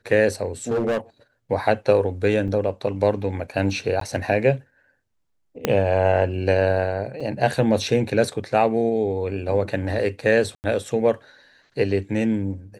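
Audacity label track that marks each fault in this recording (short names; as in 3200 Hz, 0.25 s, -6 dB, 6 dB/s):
0.690000	0.980000	clipped -18.5 dBFS
2.480000	2.490000	gap 5.7 ms
4.000000	4.010000	gap 13 ms
5.650000	5.650000	pop -6 dBFS
7.200000	7.210000	gap 5 ms
10.550000	10.640000	gap 89 ms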